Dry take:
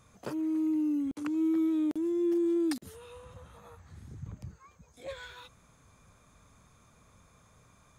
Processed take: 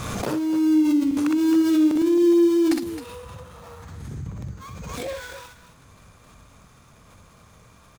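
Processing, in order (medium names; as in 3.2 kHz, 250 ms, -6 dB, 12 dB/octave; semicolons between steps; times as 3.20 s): dead-time distortion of 0.11 ms; loudspeakers at several distances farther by 21 m -4 dB, 91 m -11 dB; swell ahead of each attack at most 24 dB/s; trim +7.5 dB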